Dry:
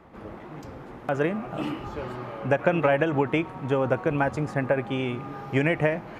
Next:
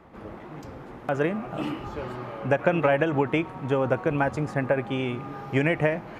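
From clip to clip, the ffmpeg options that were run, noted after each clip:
-af anull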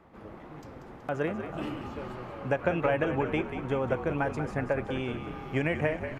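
-filter_complex "[0:a]asplit=9[a][b][c][d][e][f][g][h][i];[b]adelay=187,afreqshift=-46,volume=-9dB[j];[c]adelay=374,afreqshift=-92,volume=-13.2dB[k];[d]adelay=561,afreqshift=-138,volume=-17.3dB[l];[e]adelay=748,afreqshift=-184,volume=-21.5dB[m];[f]adelay=935,afreqshift=-230,volume=-25.6dB[n];[g]adelay=1122,afreqshift=-276,volume=-29.8dB[o];[h]adelay=1309,afreqshift=-322,volume=-33.9dB[p];[i]adelay=1496,afreqshift=-368,volume=-38.1dB[q];[a][j][k][l][m][n][o][p][q]amix=inputs=9:normalize=0,volume=-5.5dB"

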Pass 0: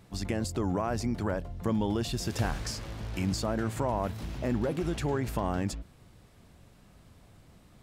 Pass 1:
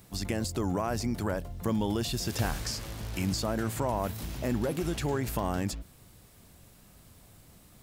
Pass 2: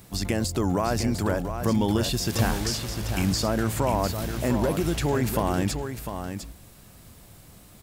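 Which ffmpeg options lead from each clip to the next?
-filter_complex "[0:a]acrossover=split=5600[a][b];[b]acompressor=threshold=-49dB:ratio=4:attack=1:release=60[c];[a][c]amix=inputs=2:normalize=0,aemphasis=mode=production:type=50fm"
-af "aecho=1:1:701:0.398,volume=5.5dB"

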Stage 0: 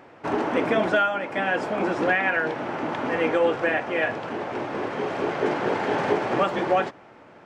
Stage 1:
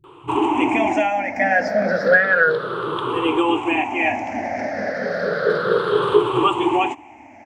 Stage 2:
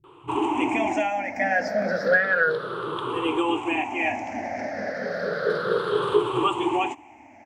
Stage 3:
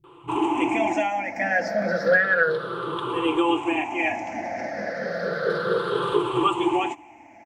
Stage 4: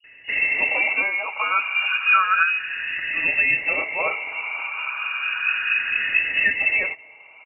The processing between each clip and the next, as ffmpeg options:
-filter_complex "[0:a]afftfilt=real='re*pow(10,23/40*sin(2*PI*(0.65*log(max(b,1)*sr/1024/100)/log(2)-(-0.32)*(pts-256)/sr)))':imag='im*pow(10,23/40*sin(2*PI*(0.65*log(max(b,1)*sr/1024/100)/log(2)-(-0.32)*(pts-256)/sr)))':win_size=1024:overlap=0.75,acrossover=split=160[a][b];[b]adelay=40[c];[a][c]amix=inputs=2:normalize=0"
-af "adynamicequalizer=threshold=0.02:dfrequency=4500:dqfactor=0.7:tfrequency=4500:tqfactor=0.7:attack=5:release=100:ratio=0.375:range=2.5:mode=boostabove:tftype=highshelf,volume=-5.5dB"
-af "aecho=1:1:5.9:0.41"
-af "lowpass=f=2.6k:t=q:w=0.5098,lowpass=f=2.6k:t=q:w=0.6013,lowpass=f=2.6k:t=q:w=0.9,lowpass=f=2.6k:t=q:w=2.563,afreqshift=-3000,volume=1.5dB"

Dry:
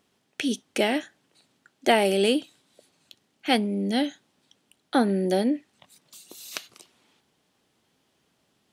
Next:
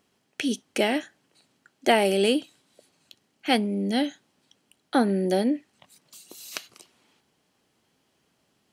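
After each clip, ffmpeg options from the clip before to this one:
-af "bandreject=f=3.6k:w=15"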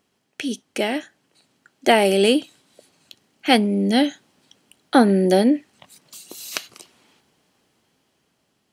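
-af "dynaudnorm=f=360:g=9:m=10dB"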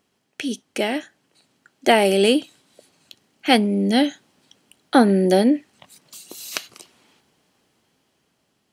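-af anull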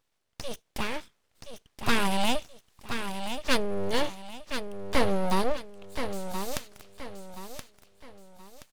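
-filter_complex "[0:a]asplit=2[a][b];[b]aecho=0:1:1025|2050|3075|4100:0.398|0.143|0.0516|0.0186[c];[a][c]amix=inputs=2:normalize=0,aeval=exprs='abs(val(0))':c=same,volume=-6.5dB"

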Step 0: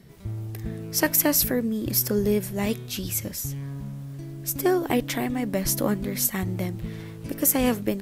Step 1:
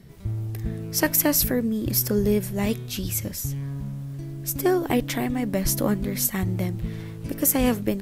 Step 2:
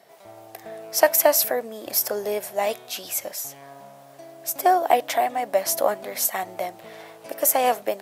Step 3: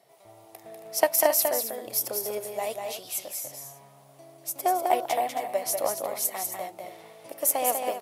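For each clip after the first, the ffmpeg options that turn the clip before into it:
-af "lowshelf=f=120:g=7"
-af "highpass=f=680:t=q:w=5,volume=1dB"
-af "equalizer=f=125:t=o:w=0.33:g=9,equalizer=f=200:t=o:w=0.33:g=-4,equalizer=f=1.6k:t=o:w=0.33:g=-8,equalizer=f=10k:t=o:w=0.33:g=6,aeval=exprs='0.841*(cos(1*acos(clip(val(0)/0.841,-1,1)))-cos(1*PI/2))+0.119*(cos(3*acos(clip(val(0)/0.841,-1,1)))-cos(3*PI/2))':c=same,aecho=1:1:195.3|271.1:0.562|0.282,volume=-2.5dB"

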